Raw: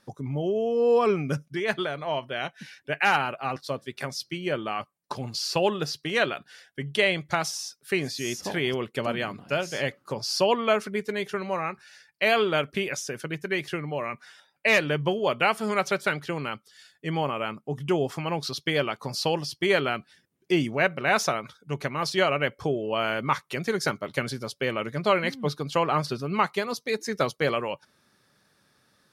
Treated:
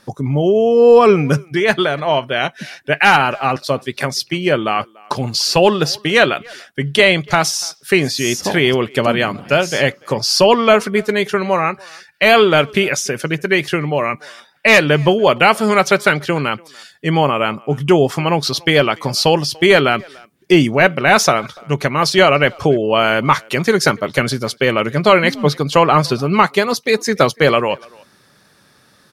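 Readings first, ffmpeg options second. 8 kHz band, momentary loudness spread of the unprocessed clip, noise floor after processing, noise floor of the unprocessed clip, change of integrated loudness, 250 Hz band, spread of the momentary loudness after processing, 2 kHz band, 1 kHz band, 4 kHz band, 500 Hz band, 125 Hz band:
+13.0 dB, 10 LU, -53 dBFS, -68 dBFS, +12.5 dB, +13.0 dB, 9 LU, +12.0 dB, +12.5 dB, +12.5 dB, +12.5 dB, +13.0 dB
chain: -filter_complex "[0:a]asplit=2[a][b];[b]adelay=290,highpass=300,lowpass=3.4k,asoftclip=type=hard:threshold=-18.5dB,volume=-25dB[c];[a][c]amix=inputs=2:normalize=0,apsyclip=15dB,volume=-2dB"

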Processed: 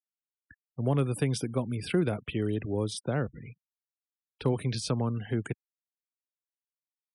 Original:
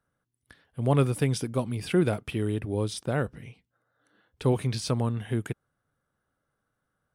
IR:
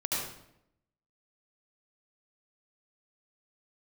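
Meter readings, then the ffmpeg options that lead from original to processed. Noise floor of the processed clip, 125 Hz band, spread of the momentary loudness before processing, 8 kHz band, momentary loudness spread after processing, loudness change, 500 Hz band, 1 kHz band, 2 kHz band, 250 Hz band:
under -85 dBFS, -3.0 dB, 10 LU, -2.0 dB, 11 LU, -3.0 dB, -3.0 dB, -4.0 dB, -3.0 dB, -2.0 dB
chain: -filter_complex "[0:a]afftfilt=real='re*gte(hypot(re,im),0.00708)':imag='im*gte(hypot(re,im),0.00708)':win_size=1024:overlap=0.75,acrossover=split=110|350[a][b][c];[a]acompressor=threshold=-41dB:ratio=4[d];[b]acompressor=threshold=-25dB:ratio=4[e];[c]acompressor=threshold=-30dB:ratio=4[f];[d][e][f]amix=inputs=3:normalize=0,aeval=exprs='0.168*(cos(1*acos(clip(val(0)/0.168,-1,1)))-cos(1*PI/2))+0.00335*(cos(3*acos(clip(val(0)/0.168,-1,1)))-cos(3*PI/2))':c=same"

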